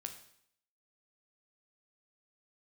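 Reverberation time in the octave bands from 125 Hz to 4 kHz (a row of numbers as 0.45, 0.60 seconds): 0.65, 0.65, 0.65, 0.65, 0.65, 0.65 seconds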